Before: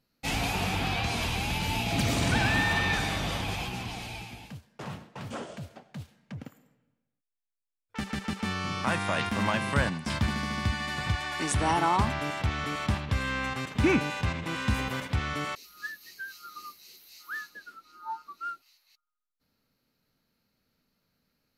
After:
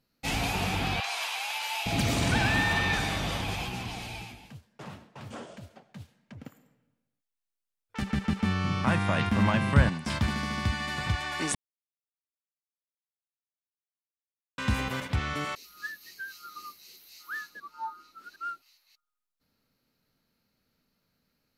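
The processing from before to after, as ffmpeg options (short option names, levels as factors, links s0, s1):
-filter_complex "[0:a]asettb=1/sr,asplit=3[s0][s1][s2];[s0]atrim=end=1.004[s3];[s1]atrim=start=1:end=1.86,asetpts=PTS-STARTPTS,afade=t=in:d=0.004:c=qsin,afade=t=out:st=0.856:d=0.004:c=qsin,highpass=f=720:w=0.5412,highpass=f=720:w=1.3066[s4];[s2]atrim=start=1.856[s5];[s3][s4]acrossfade=d=0.004:c1=hsin:c2=qsin[s6];[s6][s5]acrossfade=d=0.004:c1=qsin:c2=hsin,asettb=1/sr,asplit=3[s7][s8][s9];[s7]atrim=end=4.324[s10];[s8]atrim=start=4.32:end=6.45,asetpts=PTS-STARTPTS,afade=t=in:d=0.004:c=qsin,afade=t=out:st=2.126:d=0.004:c=qsin,flanger=delay=3:depth=7.2:regen=-46:speed=1.5:shape=sinusoidal[s11];[s9]atrim=start=6.446[s12];[s10][s11]acrossfade=d=0.004:c1=hsin:c2=qsin[s13];[s13][s12]acrossfade=d=0.004:c1=qsin:c2=hsin,asettb=1/sr,asplit=3[s14][s15][s16];[s14]atrim=end=8.024[s17];[s15]atrim=start=8.02:end=9.89,asetpts=PTS-STARTPTS,afade=t=in:d=0.004:c=qsin,afade=t=out:st=1.866:d=0.004:c=qsin,bass=f=250:g=8,treble=f=4000:g=-5[s18];[s16]atrim=start=9.886[s19];[s17][s18]acrossfade=d=0.004:c1=hsin:c2=qsin[s20];[s20][s19]acrossfade=d=0.004:c1=qsin:c2=hsin,asplit=5[s21][s22][s23][s24][s25];[s21]atrim=end=11.55,asetpts=PTS-STARTPTS,afade=t=out:st=11.546:d=0.004:c=hsin[s26];[s22]atrim=start=11.55:end=14.58,asetpts=PTS-STARTPTS,volume=0[s27];[s23]atrim=start=14.58:end=17.602,asetpts=PTS-STARTPTS,afade=t=in:d=0.004:c=hsin[s28];[s24]atrim=start=17.598:end=18.362,asetpts=PTS-STARTPTS,areverse[s29];[s25]atrim=start=18.358[s30];[s26][s27][s28]concat=n=3:v=0:a=1[s31];[s31][s29]acrossfade=d=0.004:c1=hsin:c2=hsin[s32];[s32][s30]acrossfade=d=0.004:c1=hsin:c2=hsin"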